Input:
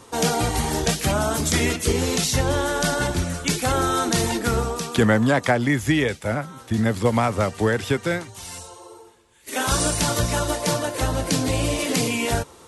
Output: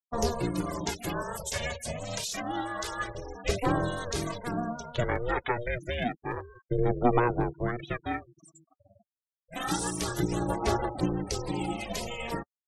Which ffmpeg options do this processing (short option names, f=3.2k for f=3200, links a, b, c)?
-filter_complex "[0:a]asettb=1/sr,asplit=3[a][b][c];[a]atrim=end=1.224[d];[b]atrim=start=1.22:end=3.49,asetpts=PTS-STARTPTS,afade=t=in:d=0.004:c=qsin,afade=t=out:st=2.266:d=0.004:c=qsin,highpass=280[e];[c]atrim=start=3.486[f];[d][e]acrossfade=d=0.004:c1=hsin:c2=qsin[g];[g][f]acrossfade=d=0.004:c1=qsin:c2=hsin,afftfilt=real='re*gte(hypot(re,im),0.0562)':imag='im*gte(hypot(re,im),0.0562)':win_size=1024:overlap=0.75,aphaser=in_gain=1:out_gain=1:delay=3.1:decay=0.62:speed=0.28:type=sinusoidal,aeval=exprs='val(0)*sin(2*PI*240*n/s)':c=same,volume=-8.5dB"